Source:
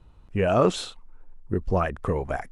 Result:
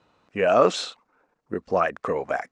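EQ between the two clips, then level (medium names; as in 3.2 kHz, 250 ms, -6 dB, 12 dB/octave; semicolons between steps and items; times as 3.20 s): cabinet simulation 340–7100 Hz, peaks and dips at 370 Hz -6 dB, 900 Hz -4 dB, 3.2 kHz -4 dB; +5.0 dB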